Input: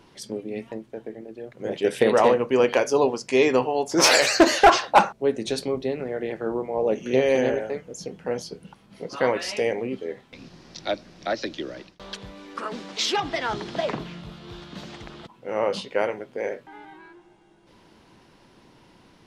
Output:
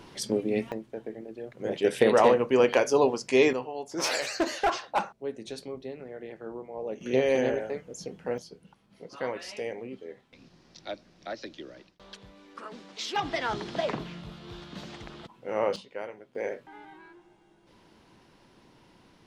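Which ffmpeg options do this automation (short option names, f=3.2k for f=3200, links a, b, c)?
-af "asetnsamples=n=441:p=0,asendcmd='0.72 volume volume -2dB;3.53 volume volume -12dB;7.01 volume volume -4dB;8.38 volume volume -10.5dB;13.16 volume volume -3dB;15.76 volume volume -13.5dB;16.35 volume volume -4dB',volume=4.5dB"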